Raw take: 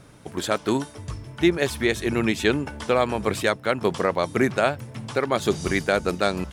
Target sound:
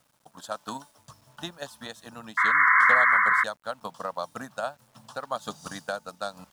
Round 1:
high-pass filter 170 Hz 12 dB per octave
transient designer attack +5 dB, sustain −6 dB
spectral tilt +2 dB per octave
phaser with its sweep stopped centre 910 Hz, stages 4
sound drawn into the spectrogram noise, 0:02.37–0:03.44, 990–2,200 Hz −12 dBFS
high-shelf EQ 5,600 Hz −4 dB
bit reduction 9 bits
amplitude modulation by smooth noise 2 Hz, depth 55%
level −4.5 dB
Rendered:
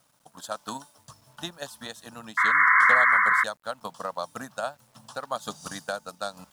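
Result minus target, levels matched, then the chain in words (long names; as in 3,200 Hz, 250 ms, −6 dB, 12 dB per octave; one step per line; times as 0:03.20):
8,000 Hz band +3.0 dB
high-pass filter 170 Hz 12 dB per octave
transient designer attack +5 dB, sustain −6 dB
spectral tilt +2 dB per octave
phaser with its sweep stopped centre 910 Hz, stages 4
sound drawn into the spectrogram noise, 0:02.37–0:03.44, 990–2,200 Hz −12 dBFS
high-shelf EQ 5,600 Hz −10 dB
bit reduction 9 bits
amplitude modulation by smooth noise 2 Hz, depth 55%
level −4.5 dB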